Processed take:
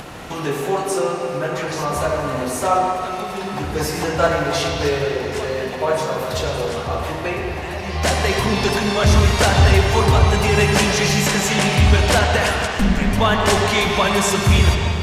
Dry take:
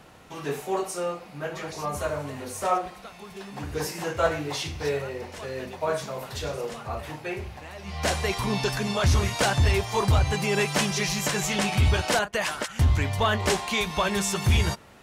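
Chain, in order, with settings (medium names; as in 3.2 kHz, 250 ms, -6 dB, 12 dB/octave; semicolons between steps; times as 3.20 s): in parallel at 0 dB: upward compressor, threshold -24 dBFS; 12.56–13.12 s: on the sum: ring modulator 120 Hz; wow and flutter 20 cents; reverberation RT60 2.8 s, pre-delay 60 ms, DRR 1 dB; resampled via 32 kHz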